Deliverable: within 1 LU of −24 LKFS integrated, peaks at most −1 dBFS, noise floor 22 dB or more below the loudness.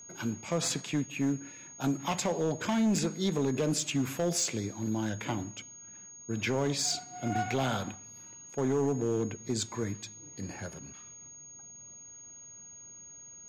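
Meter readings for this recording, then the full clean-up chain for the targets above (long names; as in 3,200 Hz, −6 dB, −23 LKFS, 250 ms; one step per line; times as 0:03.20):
share of clipped samples 1.5%; peaks flattened at −23.0 dBFS; interfering tone 6,600 Hz; level of the tone −47 dBFS; integrated loudness −32.0 LKFS; sample peak −23.0 dBFS; target loudness −24.0 LKFS
→ clipped peaks rebuilt −23 dBFS
notch filter 6,600 Hz, Q 30
level +8 dB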